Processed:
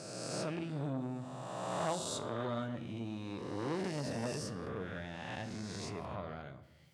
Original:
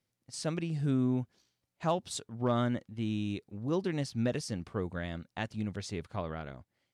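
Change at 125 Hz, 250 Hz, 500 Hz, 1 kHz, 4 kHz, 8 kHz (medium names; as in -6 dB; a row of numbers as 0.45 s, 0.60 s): -7.0 dB, -7.0 dB, -3.5 dB, -2.0 dB, -1.5 dB, -0.5 dB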